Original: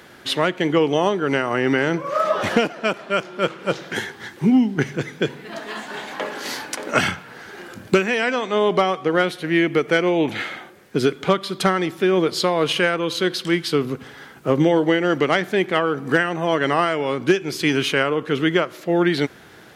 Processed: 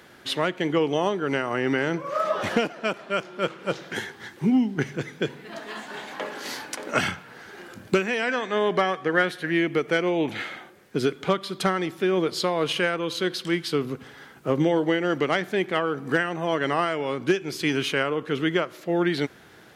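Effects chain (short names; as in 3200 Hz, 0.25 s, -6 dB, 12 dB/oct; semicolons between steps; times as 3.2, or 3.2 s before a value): 8.29–9.51 bell 1700 Hz +13 dB 0.27 oct; gain -5 dB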